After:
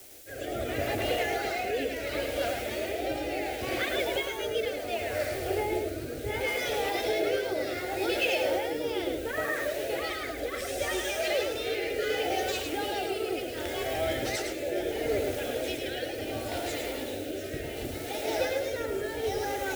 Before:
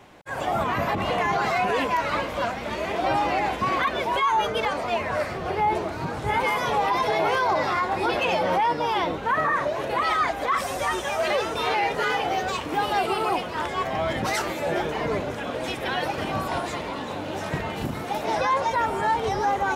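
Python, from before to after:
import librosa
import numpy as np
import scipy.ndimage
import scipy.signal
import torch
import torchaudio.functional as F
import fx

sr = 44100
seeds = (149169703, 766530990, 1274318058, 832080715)

y = fx.fixed_phaser(x, sr, hz=430.0, stages=4)
y = fx.dmg_noise_colour(y, sr, seeds[0], colour='blue', level_db=-45.0)
y = fx.rotary(y, sr, hz=0.7)
y = y + 10.0 ** (-5.5 / 20.0) * np.pad(y, (int(107 * sr / 1000.0), 0))[:len(y)]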